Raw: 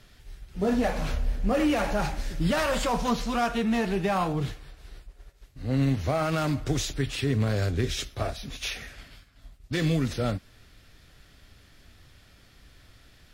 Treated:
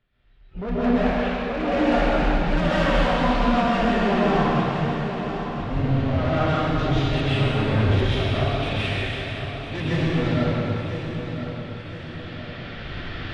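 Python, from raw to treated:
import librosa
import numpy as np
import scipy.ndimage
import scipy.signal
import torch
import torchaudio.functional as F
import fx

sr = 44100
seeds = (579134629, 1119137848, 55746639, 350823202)

y = fx.recorder_agc(x, sr, target_db=-22.0, rise_db_per_s=5.9, max_gain_db=30)
y = scipy.signal.sosfilt(scipy.signal.butter(4, 3300.0, 'lowpass', fs=sr, output='sos'), y)
y = fx.noise_reduce_blind(y, sr, reduce_db=18)
y = fx.highpass(y, sr, hz=440.0, slope=12, at=(0.97, 1.52))
y = 10.0 ** (-26.5 / 20.0) * np.tanh(y / 10.0 ** (-26.5 / 20.0))
y = fx.echo_feedback(y, sr, ms=1007, feedback_pct=47, wet_db=-9.5)
y = fx.rev_plate(y, sr, seeds[0], rt60_s=2.9, hf_ratio=0.95, predelay_ms=110, drr_db=-10.0)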